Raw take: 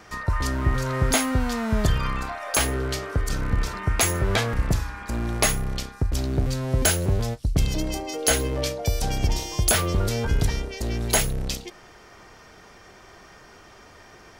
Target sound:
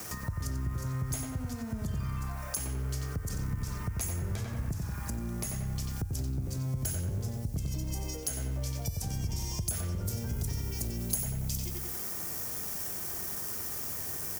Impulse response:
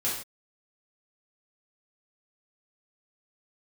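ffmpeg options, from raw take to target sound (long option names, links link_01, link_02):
-filter_complex "[0:a]highpass=89,lowshelf=frequency=240:gain=9.5,asplit=2[link_01][link_02];[link_02]adelay=91,lowpass=frequency=3000:poles=1,volume=-3dB,asplit=2[link_03][link_04];[link_04]adelay=91,lowpass=frequency=3000:poles=1,volume=0.47,asplit=2[link_05][link_06];[link_06]adelay=91,lowpass=frequency=3000:poles=1,volume=0.47,asplit=2[link_07][link_08];[link_08]adelay=91,lowpass=frequency=3000:poles=1,volume=0.47,asplit=2[link_09][link_10];[link_10]adelay=91,lowpass=frequency=3000:poles=1,volume=0.47,asplit=2[link_11][link_12];[link_12]adelay=91,lowpass=frequency=3000:poles=1,volume=0.47[link_13];[link_01][link_03][link_05][link_07][link_09][link_11][link_13]amix=inputs=7:normalize=0,acrusher=bits=7:mix=0:aa=0.000001,acompressor=threshold=-31dB:ratio=6,asetnsamples=nb_out_samples=441:pad=0,asendcmd='10.06 highshelf g 8.5',highshelf=frequency=9200:gain=-2,acrossover=split=200[link_14][link_15];[link_15]acompressor=threshold=-43dB:ratio=4[link_16];[link_14][link_16]amix=inputs=2:normalize=0,aexciter=amount=3.5:drive=6.6:freq=5300"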